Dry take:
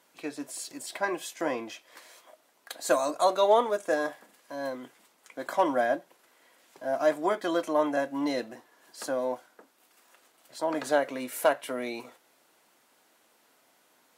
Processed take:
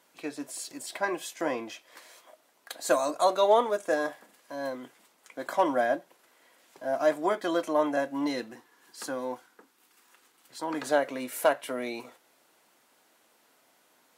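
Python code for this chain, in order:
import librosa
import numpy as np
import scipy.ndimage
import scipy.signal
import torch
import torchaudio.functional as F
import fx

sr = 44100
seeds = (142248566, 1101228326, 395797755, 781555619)

y = fx.peak_eq(x, sr, hz=620.0, db=-12.5, octaves=0.34, at=(8.27, 10.83))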